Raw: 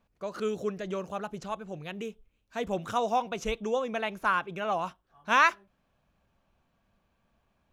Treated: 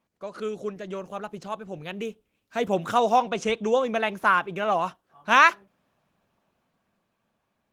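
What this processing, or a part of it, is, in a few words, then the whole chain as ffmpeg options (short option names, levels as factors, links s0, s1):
video call: -filter_complex "[0:a]asplit=3[s0][s1][s2];[s0]afade=t=out:st=3.2:d=0.02[s3];[s1]lowpass=f=9800:w=0.5412,lowpass=f=9800:w=1.3066,afade=t=in:st=3.2:d=0.02,afade=t=out:st=3.76:d=0.02[s4];[s2]afade=t=in:st=3.76:d=0.02[s5];[s3][s4][s5]amix=inputs=3:normalize=0,highpass=140,dynaudnorm=f=350:g=11:m=2.51" -ar 48000 -c:a libopus -b:a 20k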